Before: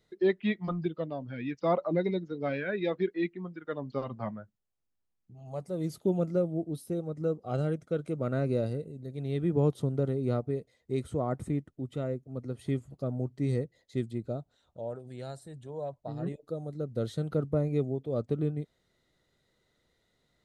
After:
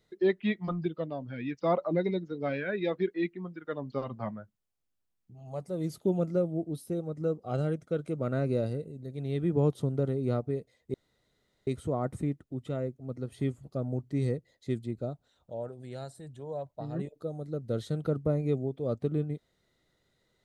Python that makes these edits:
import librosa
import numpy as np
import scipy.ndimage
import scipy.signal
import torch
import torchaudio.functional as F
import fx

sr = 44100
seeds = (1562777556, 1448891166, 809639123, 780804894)

y = fx.edit(x, sr, fx.insert_room_tone(at_s=10.94, length_s=0.73), tone=tone)